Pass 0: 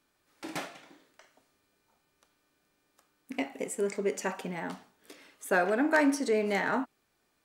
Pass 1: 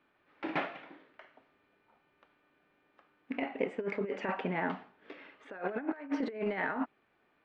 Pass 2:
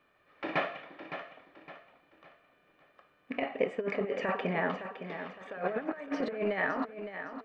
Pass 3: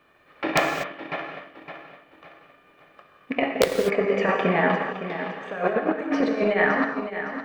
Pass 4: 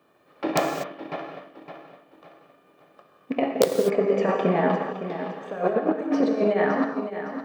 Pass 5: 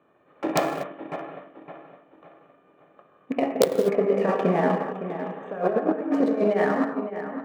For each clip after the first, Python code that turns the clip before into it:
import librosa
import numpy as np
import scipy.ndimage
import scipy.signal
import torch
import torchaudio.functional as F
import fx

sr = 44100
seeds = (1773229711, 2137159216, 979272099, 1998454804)

y1 = scipy.signal.sosfilt(scipy.signal.butter(4, 2800.0, 'lowpass', fs=sr, output='sos'), x)
y1 = fx.low_shelf(y1, sr, hz=110.0, db=-11.0)
y1 = fx.over_compress(y1, sr, threshold_db=-33.0, ratio=-0.5)
y2 = y1 + 0.41 * np.pad(y1, (int(1.7 * sr / 1000.0), 0))[:len(y1)]
y2 = fx.echo_feedback(y2, sr, ms=562, feedback_pct=37, wet_db=-10)
y2 = y2 * librosa.db_to_amplitude(2.5)
y3 = (np.mod(10.0 ** (16.5 / 20.0) * y2 + 1.0, 2.0) - 1.0) / 10.0 ** (16.5 / 20.0)
y3 = fx.rev_gated(y3, sr, seeds[0], gate_ms=270, shape='flat', drr_db=2.5)
y3 = fx.transient(y3, sr, attack_db=1, sustain_db=-4)
y3 = y3 * librosa.db_to_amplitude(8.5)
y4 = scipy.signal.sosfilt(scipy.signal.butter(2, 140.0, 'highpass', fs=sr, output='sos'), y3)
y4 = fx.peak_eq(y4, sr, hz=2100.0, db=-11.5, octaves=1.6)
y4 = y4 * librosa.db_to_amplitude(2.0)
y5 = fx.wiener(y4, sr, points=9)